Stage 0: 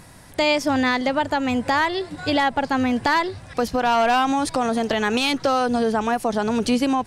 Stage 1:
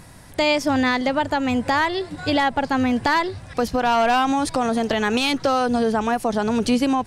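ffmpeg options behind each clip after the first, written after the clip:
-af "lowshelf=f=160:g=3.5"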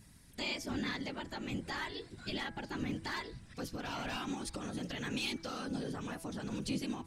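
-af "equalizer=f=700:w=0.62:g=-13.5,afftfilt=real='hypot(re,im)*cos(2*PI*random(0))':imag='hypot(re,im)*sin(2*PI*random(1))':win_size=512:overlap=0.75,bandreject=f=164.6:t=h:w=4,bandreject=f=329.2:t=h:w=4,bandreject=f=493.8:t=h:w=4,bandreject=f=658.4:t=h:w=4,bandreject=f=823:t=h:w=4,bandreject=f=987.6:t=h:w=4,bandreject=f=1.1522k:t=h:w=4,bandreject=f=1.3168k:t=h:w=4,bandreject=f=1.4814k:t=h:w=4,bandreject=f=1.646k:t=h:w=4,bandreject=f=1.8106k:t=h:w=4,bandreject=f=1.9752k:t=h:w=4,bandreject=f=2.1398k:t=h:w=4,bandreject=f=2.3044k:t=h:w=4,volume=-6.5dB"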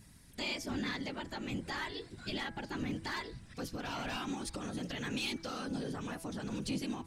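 -af "asoftclip=type=tanh:threshold=-27dB,volume=1dB"

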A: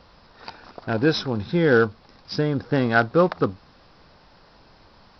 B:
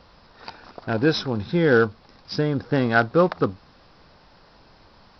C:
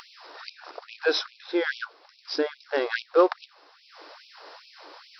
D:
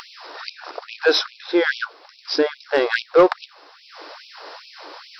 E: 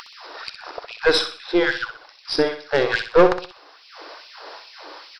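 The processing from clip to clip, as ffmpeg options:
-af anull
-af "acompressor=mode=upward:threshold=-34dB:ratio=2.5,afftfilt=real='re*gte(b*sr/1024,260*pow(2300/260,0.5+0.5*sin(2*PI*2.4*pts/sr)))':imag='im*gte(b*sr/1024,260*pow(2300/260,0.5+0.5*sin(2*PI*2.4*pts/sr)))':win_size=1024:overlap=0.75"
-af "asoftclip=type=tanh:threshold=-12dB,volume=8dB"
-filter_complex "[0:a]aeval=exprs='0.631*(cos(1*acos(clip(val(0)/0.631,-1,1)))-cos(1*PI/2))+0.178*(cos(2*acos(clip(val(0)/0.631,-1,1)))-cos(2*PI/2))':c=same,asplit=2[a][b];[b]aecho=0:1:63|126|189|252:0.355|0.131|0.0486|0.018[c];[a][c]amix=inputs=2:normalize=0,volume=-1dB"

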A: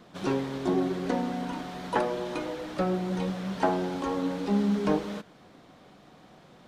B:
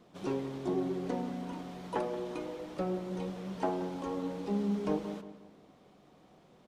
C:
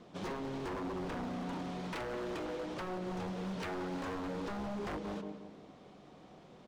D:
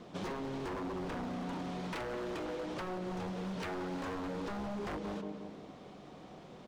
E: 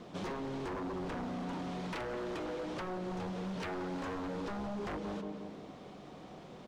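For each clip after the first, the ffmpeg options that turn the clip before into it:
-filter_complex "[0:a]equalizer=f=400:t=o:w=0.67:g=3,equalizer=f=1.6k:t=o:w=0.67:g=-5,equalizer=f=4k:t=o:w=0.67:g=-3,asplit=2[a][b];[b]adelay=177,lowpass=f=2.3k:p=1,volume=-12dB,asplit=2[c][d];[d]adelay=177,lowpass=f=2.3k:p=1,volume=0.42,asplit=2[e][f];[f]adelay=177,lowpass=f=2.3k:p=1,volume=0.42,asplit=2[g][h];[h]adelay=177,lowpass=f=2.3k:p=1,volume=0.42[i];[c][e][g][i]amix=inputs=4:normalize=0[j];[a][j]amix=inputs=2:normalize=0,volume=-7.5dB"
-af "lowpass=7.4k,acompressor=threshold=-38dB:ratio=2.5,aeval=exprs='0.0119*(abs(mod(val(0)/0.0119+3,4)-2)-1)':c=same,volume=4.5dB"
-af "acompressor=threshold=-41dB:ratio=6,volume=4.5dB"
-af "asoftclip=type=tanh:threshold=-33.5dB,volume=1.5dB"

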